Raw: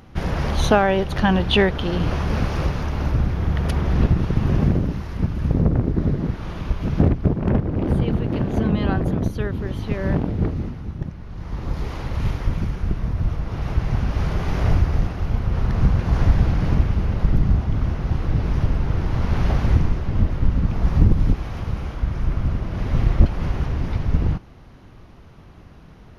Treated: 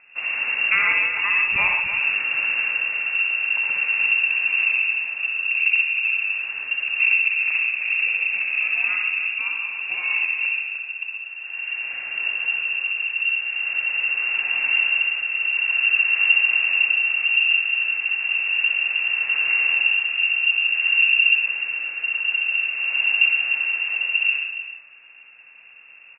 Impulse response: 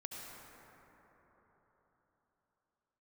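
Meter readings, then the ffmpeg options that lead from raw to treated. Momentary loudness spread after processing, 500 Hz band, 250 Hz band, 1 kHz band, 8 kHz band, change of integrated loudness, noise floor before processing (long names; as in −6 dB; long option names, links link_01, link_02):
8 LU, below −20 dB, below −30 dB, −8.0 dB, can't be measured, +3.5 dB, −44 dBFS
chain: -filter_complex "[0:a]aecho=1:1:62|303:0.473|0.335[link_01];[1:a]atrim=start_sample=2205,atrim=end_sample=6615[link_02];[link_01][link_02]afir=irnorm=-1:irlink=0,lowpass=frequency=2400:width_type=q:width=0.5098,lowpass=frequency=2400:width_type=q:width=0.6013,lowpass=frequency=2400:width_type=q:width=0.9,lowpass=frequency=2400:width_type=q:width=2.563,afreqshift=-2800"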